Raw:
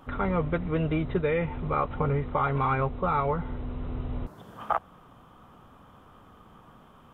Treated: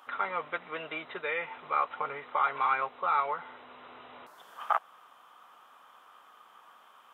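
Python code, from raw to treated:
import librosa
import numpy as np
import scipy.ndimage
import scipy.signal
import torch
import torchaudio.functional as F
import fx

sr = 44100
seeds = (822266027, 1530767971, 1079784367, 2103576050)

y = scipy.signal.sosfilt(scipy.signal.butter(2, 1000.0, 'highpass', fs=sr, output='sos'), x)
y = y * 10.0 ** (2.5 / 20.0)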